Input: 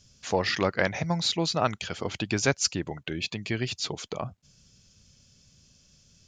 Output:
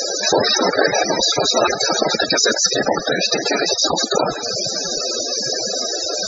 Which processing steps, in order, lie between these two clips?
per-bin compression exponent 0.2; tone controls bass -10 dB, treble +5 dB; whisperiser; Schroeder reverb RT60 2.3 s, combs from 25 ms, DRR 19 dB; loudest bins only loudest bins 32; gain +5.5 dB

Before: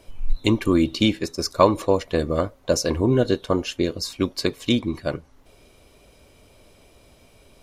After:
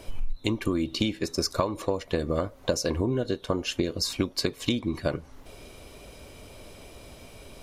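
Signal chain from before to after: compressor 16:1, threshold -29 dBFS, peak gain reduction 20.5 dB; gain +6.5 dB

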